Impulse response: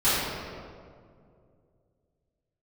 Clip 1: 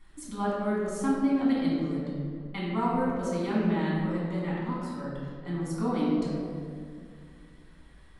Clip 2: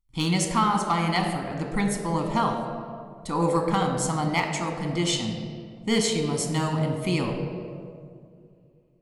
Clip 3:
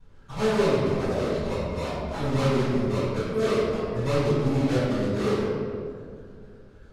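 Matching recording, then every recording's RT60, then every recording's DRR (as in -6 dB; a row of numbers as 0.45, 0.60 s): 3; 2.3, 2.3, 2.3 s; -7.5, 2.5, -16.0 dB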